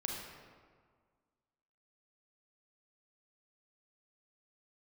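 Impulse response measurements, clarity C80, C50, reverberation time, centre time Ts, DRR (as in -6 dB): 3.0 dB, 1.0 dB, 1.7 s, 78 ms, -0.5 dB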